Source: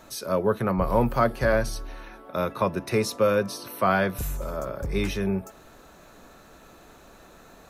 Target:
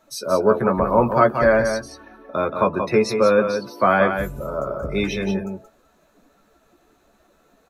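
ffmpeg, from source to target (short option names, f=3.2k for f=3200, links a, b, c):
-filter_complex "[0:a]asettb=1/sr,asplit=3[a][b][c];[a]atrim=end=2.294[d];[b]atrim=start=2.29:end=4.53,asetpts=PTS-STARTPTS,afade=t=in:d=0.004:c=qsin,afade=t=out:st=2.236:d=0.004:c=qsin,highshelf=f=6.1k:g=-6.5[e];[c]atrim=start=4.526[f];[d][e]acrossfade=d=0.004:c1=hsin:c2=qsin[g];[g][f]acrossfade=d=0.004:c1=qsin:c2=hsin,afftdn=nr=17:nf=-38,lowshelf=f=100:g=-11.5,asplit=2[h][i];[i]adelay=14,volume=-7.5dB[j];[h][j]amix=inputs=2:normalize=0,aecho=1:1:178:0.447,volume=5.5dB"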